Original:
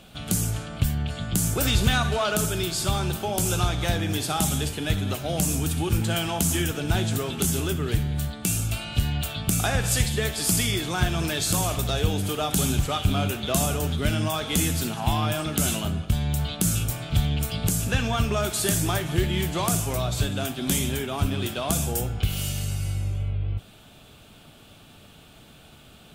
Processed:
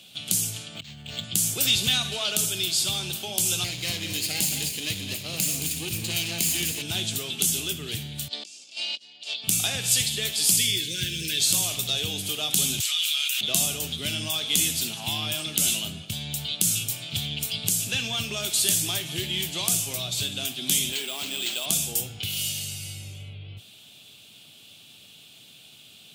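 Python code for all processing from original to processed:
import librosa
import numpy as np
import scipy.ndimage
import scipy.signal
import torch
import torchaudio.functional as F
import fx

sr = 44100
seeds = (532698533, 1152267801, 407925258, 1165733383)

y = fx.chain(x, sr, fx.over_compress(threshold_db=-31.0, ratio=-1.0),
    fx.resample_linear(factor=4), at=(0.75, 1.24))
y = fx.chain(y, sr, fx.lower_of_two(delay_ms=0.44),
    fx.echo_single(ms=221, db=-8.0), at=(3.64, 6.82))
y = fx.chain(y, sr, fx.over_compress(threshold_db=-38.0, ratio=-1.0),
    fx.cabinet(low_hz=290.0, low_slope=24, high_hz=7100.0, hz=(540.0, 1400.0, 4900.0), db=(4, -7, 9)),
    fx.transformer_sat(knee_hz=950.0), at=(8.28, 9.44))
y = fx.chain(y, sr, fx.cheby1_bandstop(low_hz=560.0, high_hz=1500.0, order=5),
    fx.low_shelf(hz=91.0, db=5.0),
    fx.quant_float(bits=4), at=(10.57, 11.4))
y = fx.chain(y, sr, fx.bessel_highpass(hz=2100.0, order=4),
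    fx.env_flatten(amount_pct=100), at=(12.8, 13.41))
y = fx.chain(y, sr, fx.highpass(hz=330.0, slope=12),
    fx.resample_bad(factor=4, down='none', up='hold'),
    fx.env_flatten(amount_pct=50), at=(20.92, 21.66))
y = scipy.signal.sosfilt(scipy.signal.butter(4, 100.0, 'highpass', fs=sr, output='sos'), y)
y = fx.high_shelf_res(y, sr, hz=2100.0, db=12.5, q=1.5)
y = y * librosa.db_to_amplitude(-9.0)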